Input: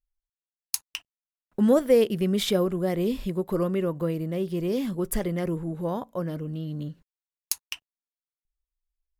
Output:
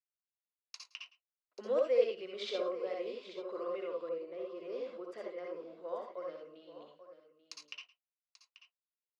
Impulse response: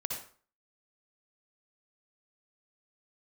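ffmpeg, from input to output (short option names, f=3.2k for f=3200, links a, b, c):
-filter_complex "[0:a]highpass=f=450:w=0.5412,highpass=f=450:w=1.3066,equalizer=f=840:t=q:w=4:g=-10,equalizer=f=1.7k:t=q:w=4:g=-6,equalizer=f=3.3k:t=q:w=4:g=-5,lowpass=f=4.6k:w=0.5412,lowpass=f=4.6k:w=1.3066,aecho=1:1:109|837:0.106|0.211[a];[1:a]atrim=start_sample=2205,atrim=end_sample=3969[b];[a][b]afir=irnorm=-1:irlink=0,asettb=1/sr,asplit=3[c][d][e];[c]atrim=end=4.094[f];[d]atrim=start=4.09:end=6.17,asetpts=PTS-STARTPTS,afade=t=in:d=0.004:c=qsin,afade=t=out:st=2.076:d=0.004:c=qsin,adynamicequalizer=threshold=0.00355:dfrequency=1800:dqfactor=0.7:tfrequency=1800:tqfactor=0.7:attack=5:release=100:ratio=0.375:range=3:mode=cutabove:tftype=highshelf[g];[e]atrim=start=6.166[h];[f][g]acrossfade=d=0.004:c1=hsin:c2=qsin[i];[i][h]acrossfade=d=0.004:c1=qsin:c2=hsin,volume=-8.5dB"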